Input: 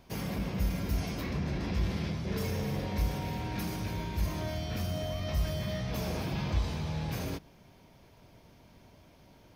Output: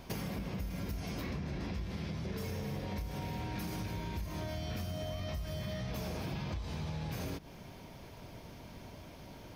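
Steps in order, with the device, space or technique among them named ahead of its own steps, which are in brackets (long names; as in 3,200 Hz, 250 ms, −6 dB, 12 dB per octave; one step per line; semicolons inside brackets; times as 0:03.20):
serial compression, peaks first (downward compressor, threshold −39 dBFS, peak gain reduction 14.5 dB; downward compressor 2 to 1, threshold −46 dBFS, peak gain reduction 5.5 dB)
level +7.5 dB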